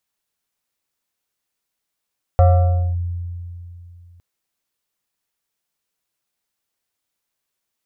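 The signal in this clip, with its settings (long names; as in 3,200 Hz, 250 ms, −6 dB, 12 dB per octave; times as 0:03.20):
two-operator FM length 1.81 s, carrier 87.2 Hz, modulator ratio 7.22, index 0.71, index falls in 0.57 s linear, decay 2.87 s, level −7 dB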